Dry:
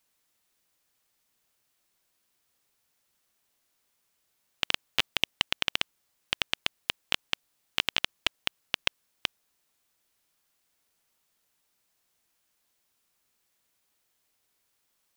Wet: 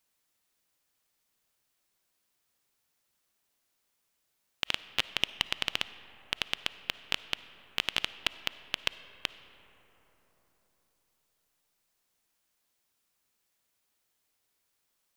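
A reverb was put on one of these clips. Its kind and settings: algorithmic reverb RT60 4.3 s, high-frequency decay 0.35×, pre-delay 15 ms, DRR 14 dB; trim -3 dB

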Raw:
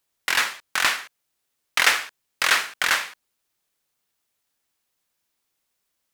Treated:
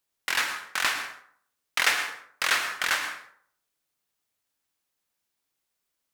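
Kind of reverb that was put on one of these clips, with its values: plate-style reverb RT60 0.58 s, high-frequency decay 0.55×, pre-delay 95 ms, DRR 7.5 dB; trim -5 dB

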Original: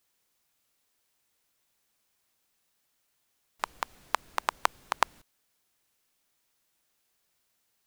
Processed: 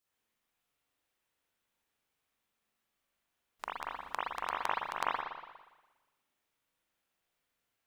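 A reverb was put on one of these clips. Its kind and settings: spring tank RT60 1.2 s, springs 40/58 ms, chirp 80 ms, DRR -7 dB; trim -11.5 dB

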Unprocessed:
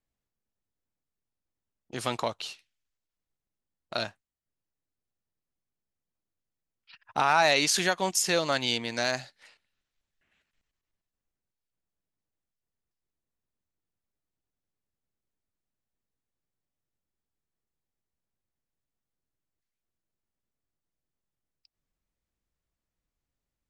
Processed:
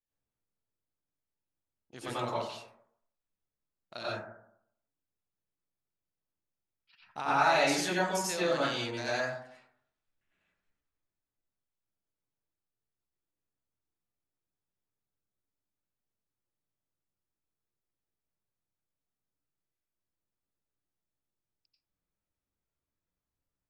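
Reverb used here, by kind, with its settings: plate-style reverb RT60 0.69 s, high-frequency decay 0.25×, pre-delay 80 ms, DRR -8.5 dB; trim -12.5 dB

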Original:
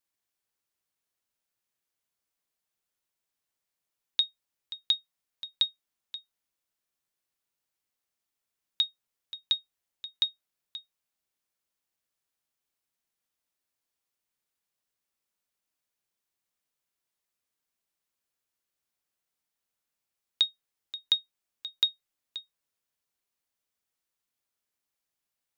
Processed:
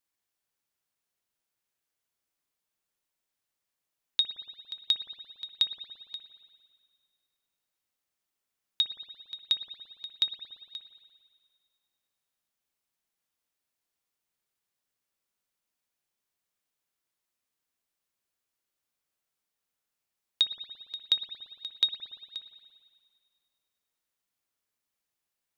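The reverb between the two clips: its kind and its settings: spring tank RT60 1.9 s, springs 57 ms, chirp 75 ms, DRR 7 dB

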